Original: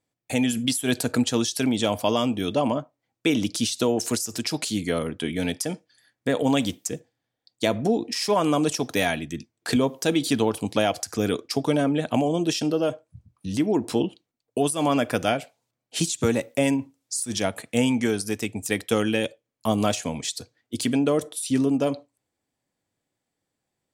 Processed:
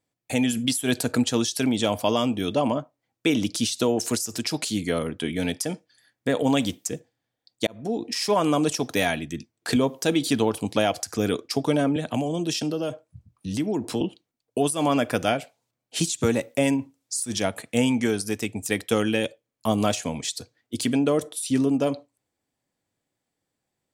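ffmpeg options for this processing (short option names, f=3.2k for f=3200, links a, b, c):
-filter_complex "[0:a]asettb=1/sr,asplit=3[a][b][c];[a]atrim=end=11.964[d];[b]atrim=start=11.96:end=14.01,asetpts=PTS-STARTPTS,afade=t=in:d=0.004:c=qsin,afade=t=out:st=2.046:d=0.004:c=qsin,acrossover=split=200|3000[e][f][g];[f]acompressor=threshold=-28dB:ratio=2:attack=3.2:release=140:knee=2.83:detection=peak[h];[e][h][g]amix=inputs=3:normalize=0[i];[c]atrim=start=14.006[j];[d][i]acrossfade=d=0.004:c1=hsin:c2=qsin[k];[k][j]acrossfade=d=0.004:c1=qsin:c2=hsin,asplit=2[l][m];[l]atrim=end=7.67,asetpts=PTS-STARTPTS,afade=t=out:st=7.666:d=0.004:c=hsin[n];[m]atrim=start=7.67,asetpts=PTS-STARTPTS,afade=t=in:d=0.45[o];[n][o]concat=n=2:v=0:a=1"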